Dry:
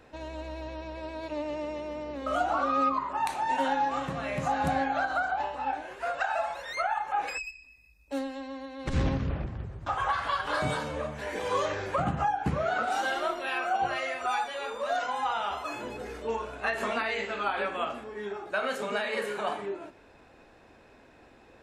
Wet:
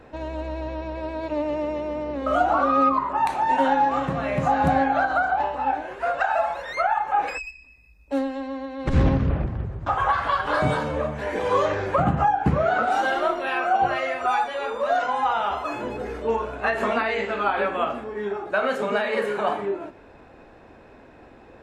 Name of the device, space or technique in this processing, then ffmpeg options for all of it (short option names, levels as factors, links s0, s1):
through cloth: -af "highshelf=f=2700:g=-11.5,volume=2.66"